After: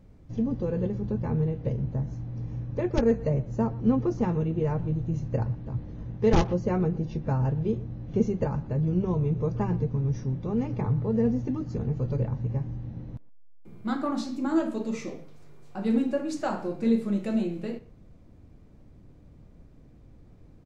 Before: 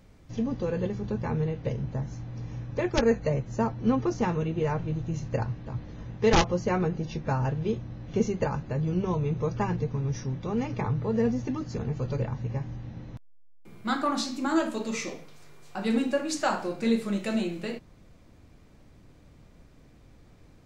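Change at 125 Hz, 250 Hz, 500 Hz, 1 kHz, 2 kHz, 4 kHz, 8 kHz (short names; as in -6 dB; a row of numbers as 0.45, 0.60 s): +2.5 dB, +2.0 dB, -0.5 dB, -4.5 dB, -7.5 dB, -9.5 dB, n/a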